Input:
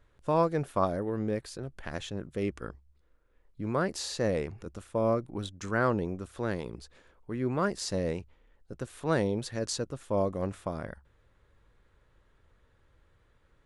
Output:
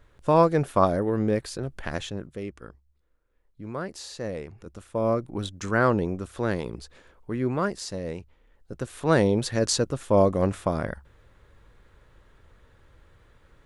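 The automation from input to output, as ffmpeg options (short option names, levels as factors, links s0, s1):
-af "volume=26.6,afade=t=out:st=1.85:d=0.59:silence=0.281838,afade=t=in:st=4.46:d=1.05:silence=0.334965,afade=t=out:st=7.3:d=0.69:silence=0.375837,afade=t=in:st=7.99:d=1.59:silence=0.251189"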